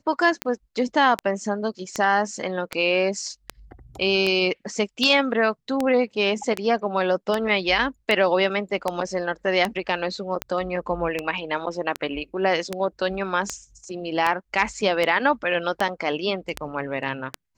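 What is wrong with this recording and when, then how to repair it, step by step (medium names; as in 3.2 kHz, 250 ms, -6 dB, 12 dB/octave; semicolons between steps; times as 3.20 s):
tick 78 rpm -9 dBFS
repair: de-click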